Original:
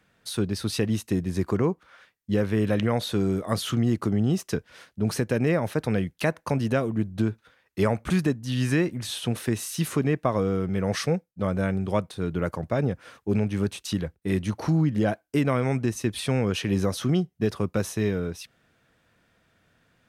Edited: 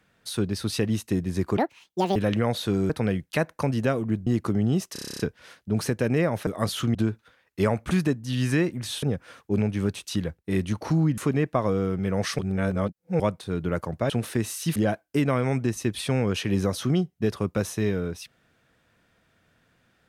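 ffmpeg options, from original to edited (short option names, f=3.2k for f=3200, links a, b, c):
-filter_complex "[0:a]asplit=22[a][b][c][d][e][f][g][h][i][j][k][l][m][n][o][p][q][r][s][t][u][v];[a]atrim=end=1.574[w];[b]atrim=start=1.57:end=2.62,asetpts=PTS-STARTPTS,asetrate=78939,aresample=44100[x];[c]atrim=start=2.616:end=3.362[y];[d]atrim=start=5.768:end=7.142[z];[e]atrim=start=3.838:end=4.532[aa];[f]atrim=start=4.498:end=4.532[ab];[g]atrim=start=4.498:end=4.532[ac];[h]atrim=start=4.498:end=4.532[ad];[i]atrim=start=4.498:end=4.532[ae];[j]atrim=start=4.498:end=4.532[af];[k]atrim=start=4.498:end=4.532[ag];[l]atrim=start=4.498:end=4.532[ah];[m]atrim=start=4.498:end=4.532[ai];[n]atrim=start=4.498:end=5.772[aj];[o]atrim=start=3.358:end=3.842[ak];[p]atrim=start=7.138:end=9.222[al];[q]atrim=start=12.798:end=14.952[am];[r]atrim=start=9.878:end=11.092[an];[s]atrim=start=11.088:end=11.902,asetpts=PTS-STARTPTS,areverse[ao];[t]atrim=start=11.898:end=12.802[ap];[u]atrim=start=9.218:end=9.882[aq];[v]atrim=start=14.948[ar];[w][x]acrossfade=d=0.004:c1=hsin:c2=hsin[as];[as][y]acrossfade=d=0.004:c1=hsin:c2=hsin[at];[at][z]acrossfade=d=0.004:c1=hsin:c2=hsin[au];[au][aa]acrossfade=d=0.004:c1=hsin:c2=hsin[av];[av][ab]acrossfade=d=0.004:c1=hsin:c2=hsin[aw];[aw][ac]acrossfade=d=0.004:c1=hsin:c2=hsin[ax];[ax][ad]acrossfade=d=0.004:c1=hsin:c2=hsin[ay];[ay][ae]acrossfade=d=0.004:c1=hsin:c2=hsin[az];[az][af]acrossfade=d=0.004:c1=hsin:c2=hsin[ba];[ba][ag]acrossfade=d=0.004:c1=hsin:c2=hsin[bb];[bb][ah]acrossfade=d=0.004:c1=hsin:c2=hsin[bc];[bc][ai]acrossfade=d=0.004:c1=hsin:c2=hsin[bd];[bd][aj]acrossfade=d=0.004:c1=hsin:c2=hsin[be];[be][ak]acrossfade=d=0.004:c1=hsin:c2=hsin[bf];[bf][al]acrossfade=d=0.004:c1=hsin:c2=hsin[bg];[bg][am]acrossfade=d=0.004:c1=hsin:c2=hsin[bh];[bh][an]acrossfade=d=0.004:c1=hsin:c2=hsin[bi];[bi][ao]acrossfade=d=0.004:c1=hsin:c2=hsin[bj];[bj][ap]acrossfade=d=0.004:c1=hsin:c2=hsin[bk];[bk][aq]acrossfade=d=0.004:c1=hsin:c2=hsin[bl];[bl][ar]acrossfade=d=0.004:c1=hsin:c2=hsin"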